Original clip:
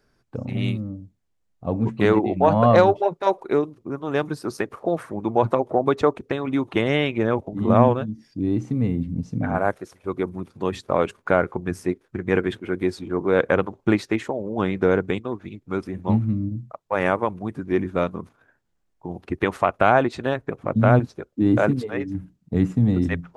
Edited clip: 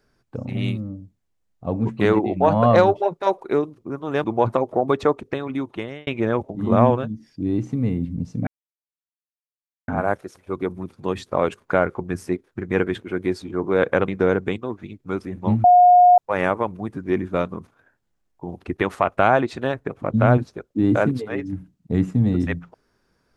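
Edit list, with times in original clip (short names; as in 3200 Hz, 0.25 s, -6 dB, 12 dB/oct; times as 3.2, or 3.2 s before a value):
4.24–5.22 cut
6.02–7.05 fade out equal-power
9.45 insert silence 1.41 s
13.65–14.7 cut
16.26–16.8 bleep 717 Hz -8 dBFS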